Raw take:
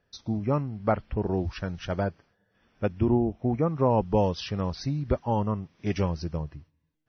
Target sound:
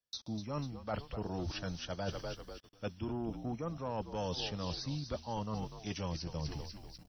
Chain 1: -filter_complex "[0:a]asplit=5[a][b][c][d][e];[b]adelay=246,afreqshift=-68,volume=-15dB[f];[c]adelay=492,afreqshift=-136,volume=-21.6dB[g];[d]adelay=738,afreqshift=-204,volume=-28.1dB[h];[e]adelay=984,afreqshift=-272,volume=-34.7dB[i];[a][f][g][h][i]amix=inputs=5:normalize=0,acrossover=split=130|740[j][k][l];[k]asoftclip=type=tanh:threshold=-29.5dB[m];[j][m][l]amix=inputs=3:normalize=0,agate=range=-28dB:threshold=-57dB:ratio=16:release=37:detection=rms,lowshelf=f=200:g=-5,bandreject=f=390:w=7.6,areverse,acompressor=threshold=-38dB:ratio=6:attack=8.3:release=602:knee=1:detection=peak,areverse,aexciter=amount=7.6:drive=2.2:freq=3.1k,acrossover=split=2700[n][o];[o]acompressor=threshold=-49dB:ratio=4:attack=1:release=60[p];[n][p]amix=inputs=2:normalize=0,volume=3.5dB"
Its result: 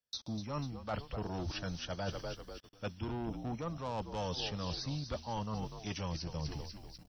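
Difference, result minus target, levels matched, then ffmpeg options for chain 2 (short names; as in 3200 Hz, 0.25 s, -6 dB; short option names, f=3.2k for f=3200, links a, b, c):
soft clip: distortion +7 dB
-filter_complex "[0:a]asplit=5[a][b][c][d][e];[b]adelay=246,afreqshift=-68,volume=-15dB[f];[c]adelay=492,afreqshift=-136,volume=-21.6dB[g];[d]adelay=738,afreqshift=-204,volume=-28.1dB[h];[e]adelay=984,afreqshift=-272,volume=-34.7dB[i];[a][f][g][h][i]amix=inputs=5:normalize=0,acrossover=split=130|740[j][k][l];[k]asoftclip=type=tanh:threshold=-21.5dB[m];[j][m][l]amix=inputs=3:normalize=0,agate=range=-28dB:threshold=-57dB:ratio=16:release=37:detection=rms,lowshelf=f=200:g=-5,bandreject=f=390:w=7.6,areverse,acompressor=threshold=-38dB:ratio=6:attack=8.3:release=602:knee=1:detection=peak,areverse,aexciter=amount=7.6:drive=2.2:freq=3.1k,acrossover=split=2700[n][o];[o]acompressor=threshold=-49dB:ratio=4:attack=1:release=60[p];[n][p]amix=inputs=2:normalize=0,volume=3.5dB"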